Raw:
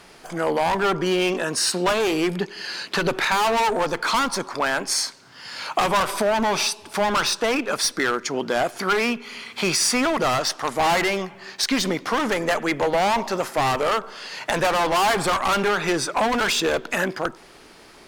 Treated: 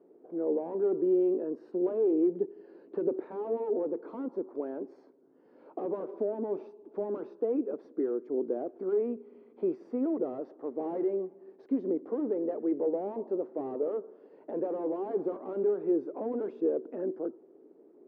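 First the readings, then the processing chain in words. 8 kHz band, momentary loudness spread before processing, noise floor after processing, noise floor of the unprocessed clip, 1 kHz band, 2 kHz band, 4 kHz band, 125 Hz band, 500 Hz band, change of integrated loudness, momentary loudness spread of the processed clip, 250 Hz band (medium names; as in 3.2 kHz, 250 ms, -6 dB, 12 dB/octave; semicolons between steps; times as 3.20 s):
under -40 dB, 7 LU, -59 dBFS, -48 dBFS, -23.5 dB, under -35 dB, under -40 dB, under -15 dB, -6.0 dB, -10.5 dB, 11 LU, -5.0 dB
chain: Butterworth band-pass 360 Hz, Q 1.7; trim -2.5 dB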